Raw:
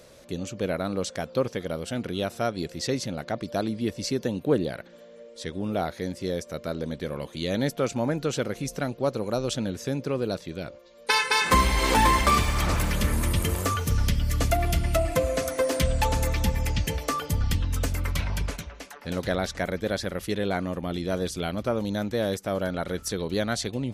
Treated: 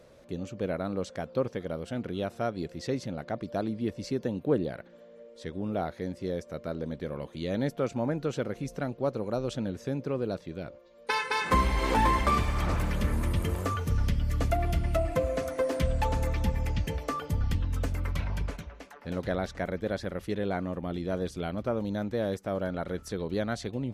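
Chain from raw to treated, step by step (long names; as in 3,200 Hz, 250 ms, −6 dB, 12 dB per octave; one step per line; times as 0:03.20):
high-shelf EQ 2,900 Hz −11.5 dB
level −3 dB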